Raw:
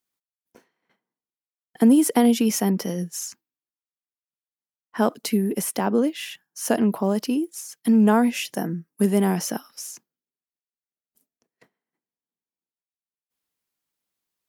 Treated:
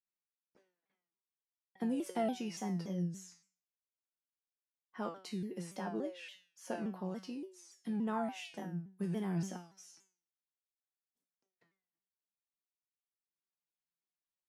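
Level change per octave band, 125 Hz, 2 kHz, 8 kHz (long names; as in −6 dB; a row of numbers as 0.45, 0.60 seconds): −12.0, −16.5, −22.5 decibels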